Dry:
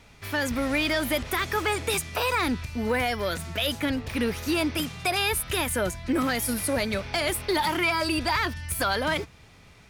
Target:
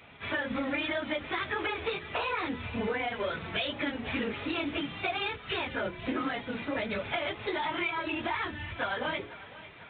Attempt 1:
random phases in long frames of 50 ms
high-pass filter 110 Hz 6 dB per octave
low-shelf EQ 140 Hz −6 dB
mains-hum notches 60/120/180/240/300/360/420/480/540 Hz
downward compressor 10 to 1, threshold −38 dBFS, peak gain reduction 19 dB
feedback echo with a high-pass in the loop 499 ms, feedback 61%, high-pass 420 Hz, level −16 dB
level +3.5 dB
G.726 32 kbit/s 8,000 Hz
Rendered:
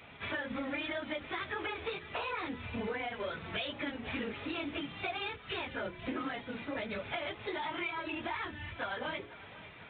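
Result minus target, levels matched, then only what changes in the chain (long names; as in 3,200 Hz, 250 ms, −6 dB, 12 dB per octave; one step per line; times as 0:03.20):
downward compressor: peak gain reduction +5.5 dB
change: downward compressor 10 to 1, threshold −32 dBFS, peak gain reduction 13.5 dB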